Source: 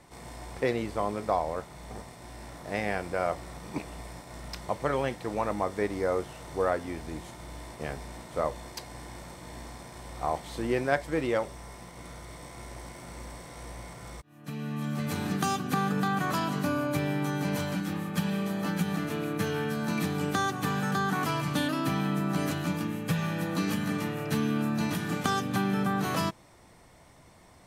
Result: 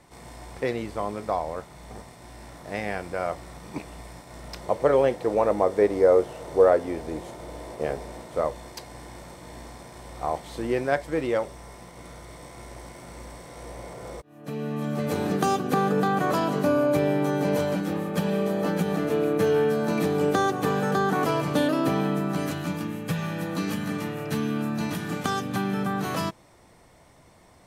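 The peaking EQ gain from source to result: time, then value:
peaking EQ 490 Hz 1.3 oct
4.27 s +0.5 dB
4.86 s +12 dB
7.98 s +12 dB
8.51 s +3.5 dB
13.41 s +3.5 dB
14.05 s +13.5 dB
22.01 s +13.5 dB
22.46 s +2.5 dB

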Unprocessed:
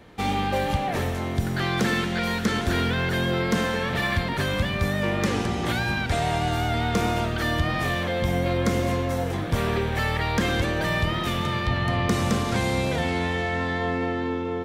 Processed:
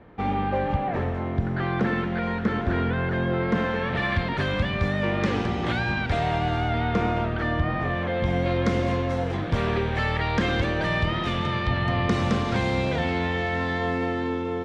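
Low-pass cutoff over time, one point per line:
3.29 s 1.7 kHz
4.27 s 3.6 kHz
6.09 s 3.6 kHz
7.88 s 1.7 kHz
8.47 s 4.1 kHz
13.30 s 4.1 kHz
14.08 s 10 kHz

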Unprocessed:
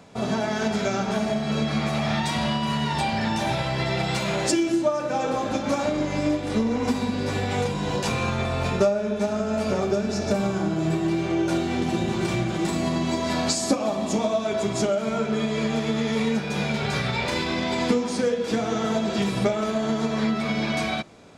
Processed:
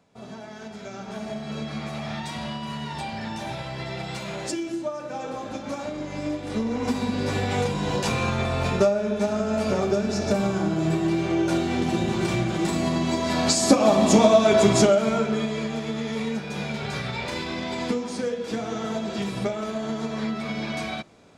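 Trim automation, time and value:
0.76 s -14.5 dB
1.33 s -7.5 dB
6.00 s -7.5 dB
7.20 s +0.5 dB
13.33 s +0.5 dB
13.93 s +8 dB
14.70 s +8 dB
15.70 s -4.5 dB

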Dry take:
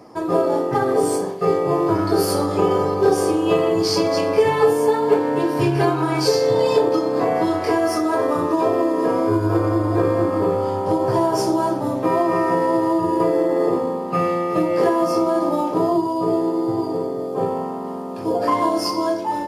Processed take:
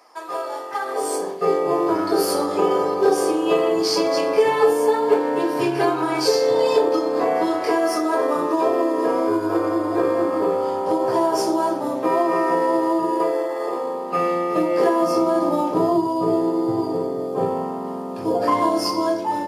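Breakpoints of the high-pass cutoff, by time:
0.81 s 1 kHz
1.35 s 280 Hz
13.02 s 280 Hz
13.58 s 740 Hz
14.36 s 230 Hz
14.91 s 230 Hz
15.48 s 83 Hz

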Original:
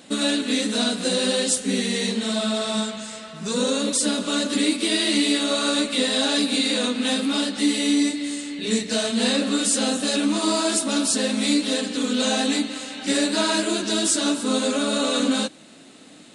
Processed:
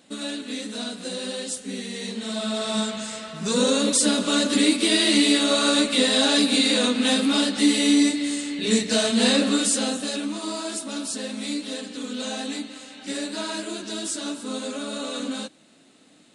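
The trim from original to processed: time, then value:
1.93 s -9 dB
3.01 s +2 dB
9.45 s +2 dB
10.38 s -8.5 dB

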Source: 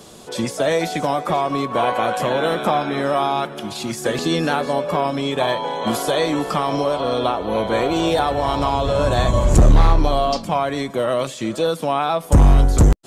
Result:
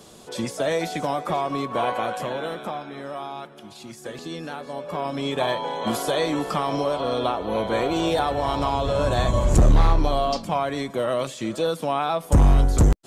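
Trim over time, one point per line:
1.90 s -5 dB
2.88 s -14 dB
4.64 s -14 dB
5.26 s -4 dB

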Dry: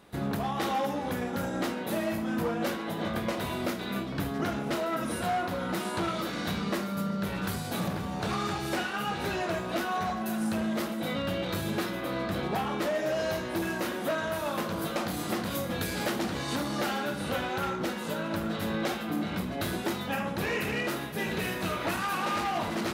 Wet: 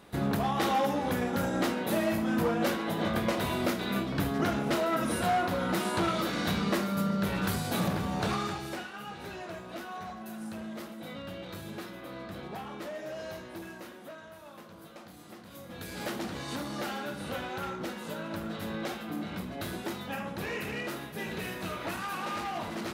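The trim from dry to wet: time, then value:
8.22 s +2 dB
8.91 s -10 dB
13.41 s -10 dB
14.32 s -17.5 dB
15.45 s -17.5 dB
16.07 s -5 dB

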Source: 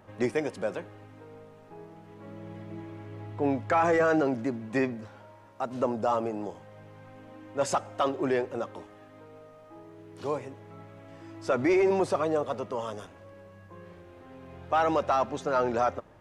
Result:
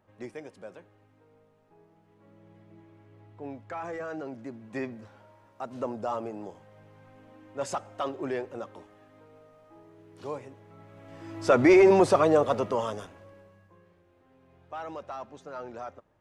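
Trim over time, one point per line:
4.14 s -13 dB
5.03 s -5 dB
10.77 s -5 dB
11.43 s +6 dB
12.67 s +6 dB
13.35 s -3 dB
13.91 s -13.5 dB

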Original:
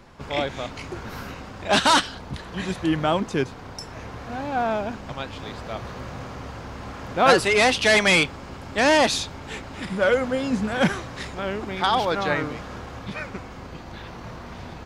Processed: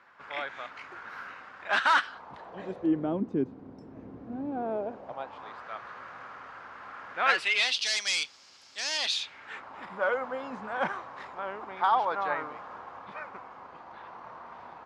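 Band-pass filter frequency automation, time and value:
band-pass filter, Q 2.1
2.00 s 1.5 kHz
3.16 s 270 Hz
4.43 s 270 Hz
5.66 s 1.4 kHz
7.08 s 1.4 kHz
7.90 s 5.3 kHz
8.90 s 5.3 kHz
9.71 s 1 kHz

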